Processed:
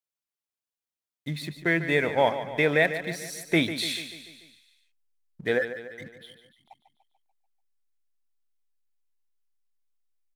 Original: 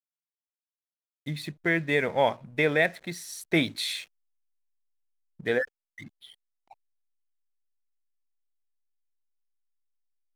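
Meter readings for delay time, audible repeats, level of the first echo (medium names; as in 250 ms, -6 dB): 146 ms, 5, -11.5 dB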